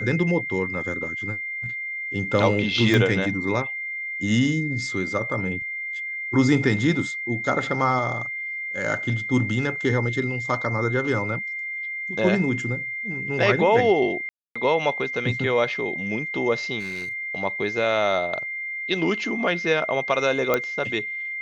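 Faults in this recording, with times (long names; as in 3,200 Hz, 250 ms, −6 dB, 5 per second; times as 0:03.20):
whistle 2,100 Hz −28 dBFS
0:02.94: click −10 dBFS
0:14.29–0:14.55: drop-out 265 ms
0:16.79–0:17.14: clipping −28 dBFS
0:20.54: click −7 dBFS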